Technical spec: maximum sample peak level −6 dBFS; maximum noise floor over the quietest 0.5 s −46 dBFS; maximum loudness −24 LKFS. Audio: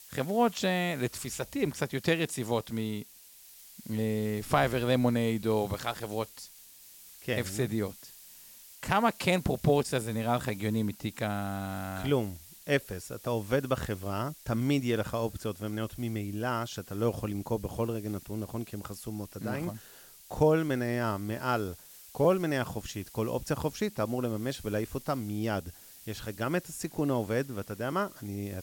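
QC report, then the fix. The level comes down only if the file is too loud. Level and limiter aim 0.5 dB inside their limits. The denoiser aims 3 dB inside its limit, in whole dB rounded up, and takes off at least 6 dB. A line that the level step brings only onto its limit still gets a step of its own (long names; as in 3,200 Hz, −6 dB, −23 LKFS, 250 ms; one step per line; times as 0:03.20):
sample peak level −12.0 dBFS: in spec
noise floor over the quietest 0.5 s −54 dBFS: in spec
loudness −31.5 LKFS: in spec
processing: no processing needed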